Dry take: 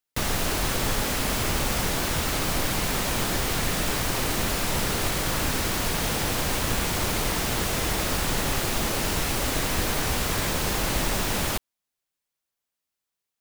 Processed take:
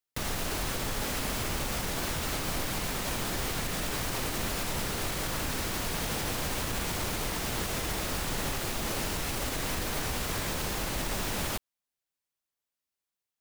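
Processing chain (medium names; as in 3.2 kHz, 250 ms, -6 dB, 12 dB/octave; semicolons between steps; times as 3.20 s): peak limiter -17 dBFS, peak gain reduction 4.5 dB; trim -5 dB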